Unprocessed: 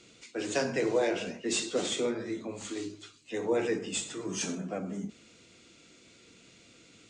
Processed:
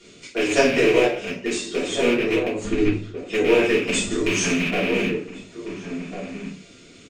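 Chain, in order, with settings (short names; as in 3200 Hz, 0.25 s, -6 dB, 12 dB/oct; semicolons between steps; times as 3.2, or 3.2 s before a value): rattling part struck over -40 dBFS, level -21 dBFS; 1.04–2.02 compressor, threshold -33 dBFS, peak gain reduction 9 dB; 2.64–3.17 RIAA curve playback; transient shaper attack +2 dB, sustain -5 dB; outdoor echo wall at 240 m, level -7 dB; reverb RT60 0.40 s, pre-delay 3 ms, DRR -9 dB; 3.89–4.71 three-band squash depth 70%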